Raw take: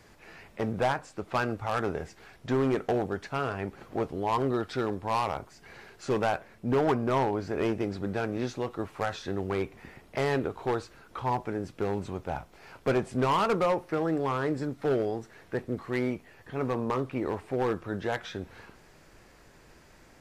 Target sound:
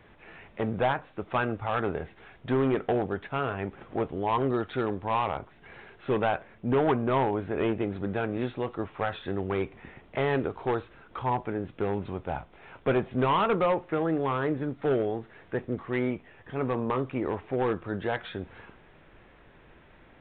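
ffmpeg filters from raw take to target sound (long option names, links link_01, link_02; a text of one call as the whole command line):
ffmpeg -i in.wav -af "aresample=8000,aresample=44100,volume=1dB" out.wav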